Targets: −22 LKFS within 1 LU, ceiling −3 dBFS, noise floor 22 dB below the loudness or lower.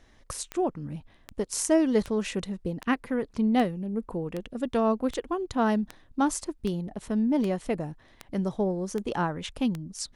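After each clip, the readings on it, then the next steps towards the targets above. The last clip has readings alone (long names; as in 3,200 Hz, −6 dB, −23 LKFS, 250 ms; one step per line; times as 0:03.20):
number of clicks 13; integrated loudness −28.5 LKFS; sample peak −11.0 dBFS; target loudness −22.0 LKFS
→ click removal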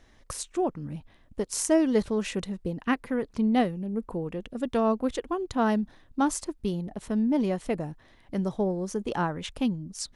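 number of clicks 0; integrated loudness −28.5 LKFS; sample peak −11.0 dBFS; target loudness −22.0 LKFS
→ level +6.5 dB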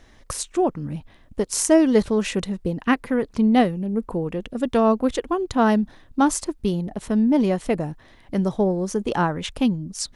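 integrated loudness −22.0 LKFS; sample peak −4.5 dBFS; background noise floor −52 dBFS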